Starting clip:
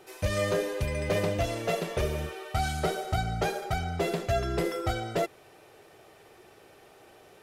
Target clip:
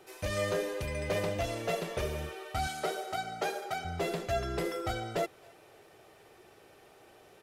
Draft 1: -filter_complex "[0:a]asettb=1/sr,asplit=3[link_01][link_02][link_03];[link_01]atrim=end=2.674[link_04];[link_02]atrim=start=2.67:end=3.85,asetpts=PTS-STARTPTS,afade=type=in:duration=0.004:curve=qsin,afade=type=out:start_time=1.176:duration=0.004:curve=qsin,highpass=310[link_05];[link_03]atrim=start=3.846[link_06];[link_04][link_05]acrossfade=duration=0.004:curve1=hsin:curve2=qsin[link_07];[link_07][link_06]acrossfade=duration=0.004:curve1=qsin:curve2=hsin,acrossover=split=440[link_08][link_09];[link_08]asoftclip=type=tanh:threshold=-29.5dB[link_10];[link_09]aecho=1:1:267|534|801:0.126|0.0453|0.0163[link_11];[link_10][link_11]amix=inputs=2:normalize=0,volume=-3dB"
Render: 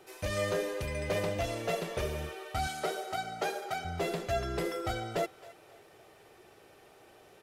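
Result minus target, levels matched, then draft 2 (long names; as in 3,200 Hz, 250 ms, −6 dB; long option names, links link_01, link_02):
echo-to-direct +7 dB
-filter_complex "[0:a]asettb=1/sr,asplit=3[link_01][link_02][link_03];[link_01]atrim=end=2.674[link_04];[link_02]atrim=start=2.67:end=3.85,asetpts=PTS-STARTPTS,afade=type=in:duration=0.004:curve=qsin,afade=type=out:start_time=1.176:duration=0.004:curve=qsin,highpass=310[link_05];[link_03]atrim=start=3.846[link_06];[link_04][link_05]acrossfade=duration=0.004:curve1=hsin:curve2=qsin[link_07];[link_07][link_06]acrossfade=duration=0.004:curve1=qsin:curve2=hsin,acrossover=split=440[link_08][link_09];[link_08]asoftclip=type=tanh:threshold=-29.5dB[link_10];[link_09]aecho=1:1:267|534:0.0562|0.0202[link_11];[link_10][link_11]amix=inputs=2:normalize=0,volume=-3dB"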